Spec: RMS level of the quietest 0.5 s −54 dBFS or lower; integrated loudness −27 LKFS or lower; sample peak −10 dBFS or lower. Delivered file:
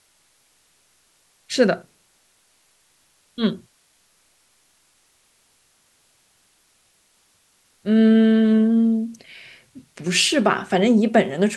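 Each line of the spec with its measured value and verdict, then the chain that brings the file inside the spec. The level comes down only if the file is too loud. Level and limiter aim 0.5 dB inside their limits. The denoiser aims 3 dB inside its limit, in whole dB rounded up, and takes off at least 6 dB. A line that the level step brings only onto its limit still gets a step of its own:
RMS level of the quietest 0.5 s −62 dBFS: in spec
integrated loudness −19.0 LKFS: out of spec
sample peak −2.5 dBFS: out of spec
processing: level −8.5 dB

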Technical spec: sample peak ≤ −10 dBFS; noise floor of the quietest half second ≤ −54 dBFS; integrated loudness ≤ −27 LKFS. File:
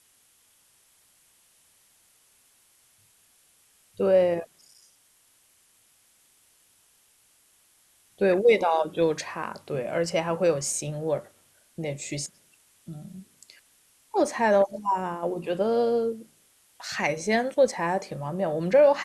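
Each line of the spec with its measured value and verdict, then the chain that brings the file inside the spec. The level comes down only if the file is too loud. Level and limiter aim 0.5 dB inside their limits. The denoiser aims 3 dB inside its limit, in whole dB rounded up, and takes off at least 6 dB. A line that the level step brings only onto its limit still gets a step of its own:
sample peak −9.0 dBFS: out of spec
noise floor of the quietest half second −63 dBFS: in spec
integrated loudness −25.5 LKFS: out of spec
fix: level −2 dB

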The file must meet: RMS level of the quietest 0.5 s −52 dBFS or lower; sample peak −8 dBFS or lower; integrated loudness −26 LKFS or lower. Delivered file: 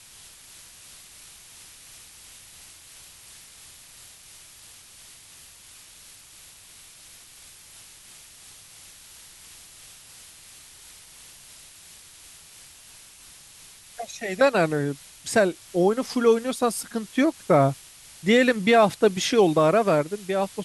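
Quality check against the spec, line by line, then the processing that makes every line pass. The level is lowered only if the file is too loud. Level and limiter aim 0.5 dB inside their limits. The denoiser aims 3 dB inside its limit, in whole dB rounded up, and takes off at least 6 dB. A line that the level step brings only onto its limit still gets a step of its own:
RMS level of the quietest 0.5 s −49 dBFS: out of spec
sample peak −6.5 dBFS: out of spec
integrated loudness −22.0 LKFS: out of spec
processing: level −4.5 dB

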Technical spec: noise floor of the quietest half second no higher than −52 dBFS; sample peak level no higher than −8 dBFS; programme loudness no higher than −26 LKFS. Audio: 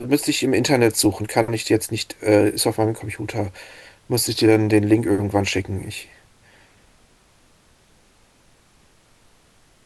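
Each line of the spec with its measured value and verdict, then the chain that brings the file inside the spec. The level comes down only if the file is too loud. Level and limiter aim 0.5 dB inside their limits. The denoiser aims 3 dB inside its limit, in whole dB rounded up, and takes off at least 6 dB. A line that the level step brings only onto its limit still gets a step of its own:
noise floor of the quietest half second −56 dBFS: in spec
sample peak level −2.5 dBFS: out of spec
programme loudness −20.0 LKFS: out of spec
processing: level −6.5 dB

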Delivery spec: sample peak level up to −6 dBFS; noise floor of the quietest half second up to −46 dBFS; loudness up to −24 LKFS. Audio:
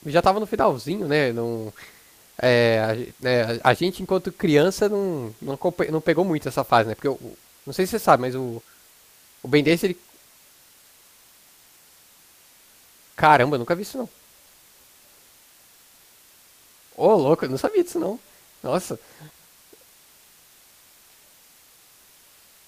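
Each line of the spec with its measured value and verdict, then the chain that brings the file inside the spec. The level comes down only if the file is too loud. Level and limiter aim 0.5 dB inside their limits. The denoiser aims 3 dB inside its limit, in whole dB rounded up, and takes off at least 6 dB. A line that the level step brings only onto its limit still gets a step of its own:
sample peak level −2.0 dBFS: out of spec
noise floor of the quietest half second −54 dBFS: in spec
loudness −22.0 LKFS: out of spec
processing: level −2.5 dB
brickwall limiter −6.5 dBFS

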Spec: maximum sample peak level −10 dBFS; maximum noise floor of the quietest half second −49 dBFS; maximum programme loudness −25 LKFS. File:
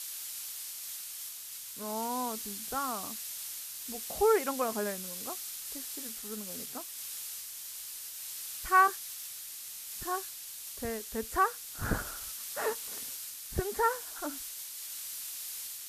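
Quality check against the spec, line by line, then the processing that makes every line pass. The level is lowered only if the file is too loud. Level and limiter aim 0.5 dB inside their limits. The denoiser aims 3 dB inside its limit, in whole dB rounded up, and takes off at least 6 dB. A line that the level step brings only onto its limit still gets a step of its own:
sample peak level −12.0 dBFS: in spec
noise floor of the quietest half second −44 dBFS: out of spec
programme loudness −34.5 LKFS: in spec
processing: broadband denoise 8 dB, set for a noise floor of −44 dBFS

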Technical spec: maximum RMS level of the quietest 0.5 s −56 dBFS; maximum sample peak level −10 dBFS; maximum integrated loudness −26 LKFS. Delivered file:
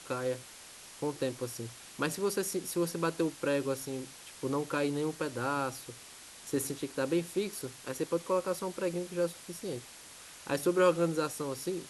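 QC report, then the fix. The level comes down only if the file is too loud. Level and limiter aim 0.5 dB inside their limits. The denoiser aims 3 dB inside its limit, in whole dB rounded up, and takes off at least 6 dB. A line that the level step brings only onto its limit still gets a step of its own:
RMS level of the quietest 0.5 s −51 dBFS: out of spec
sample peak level −15.0 dBFS: in spec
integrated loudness −33.5 LKFS: in spec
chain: broadband denoise 8 dB, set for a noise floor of −51 dBFS

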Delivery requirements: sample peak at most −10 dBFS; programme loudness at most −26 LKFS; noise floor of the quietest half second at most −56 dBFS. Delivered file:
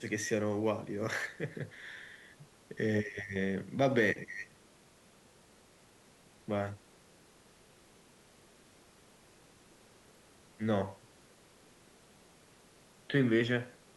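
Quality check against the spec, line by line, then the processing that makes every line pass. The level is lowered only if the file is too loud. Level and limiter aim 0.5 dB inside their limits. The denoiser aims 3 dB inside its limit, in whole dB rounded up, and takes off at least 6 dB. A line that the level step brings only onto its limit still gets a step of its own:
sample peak −15.5 dBFS: in spec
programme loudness −34.0 LKFS: in spec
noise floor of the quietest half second −62 dBFS: in spec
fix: no processing needed

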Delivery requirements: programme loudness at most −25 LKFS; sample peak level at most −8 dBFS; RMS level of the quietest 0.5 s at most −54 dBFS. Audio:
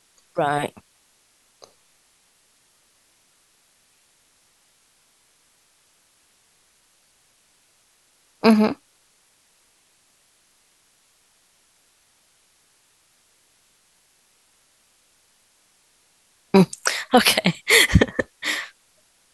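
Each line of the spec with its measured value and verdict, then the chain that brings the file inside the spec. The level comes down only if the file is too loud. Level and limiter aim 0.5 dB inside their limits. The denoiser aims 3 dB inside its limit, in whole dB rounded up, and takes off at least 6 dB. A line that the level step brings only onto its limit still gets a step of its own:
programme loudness −19.0 LKFS: out of spec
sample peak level −2.0 dBFS: out of spec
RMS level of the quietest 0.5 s −62 dBFS: in spec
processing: level −6.5 dB

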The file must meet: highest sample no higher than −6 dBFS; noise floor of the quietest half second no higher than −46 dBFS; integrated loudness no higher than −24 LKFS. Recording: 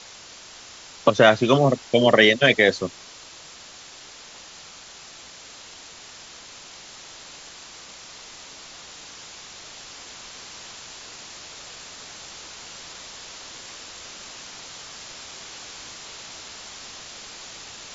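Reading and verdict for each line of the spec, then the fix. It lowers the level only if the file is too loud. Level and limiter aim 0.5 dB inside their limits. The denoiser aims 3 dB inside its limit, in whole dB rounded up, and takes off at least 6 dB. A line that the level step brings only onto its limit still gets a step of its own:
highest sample −3.0 dBFS: out of spec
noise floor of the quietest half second −44 dBFS: out of spec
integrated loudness −18.0 LKFS: out of spec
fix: level −6.5 dB

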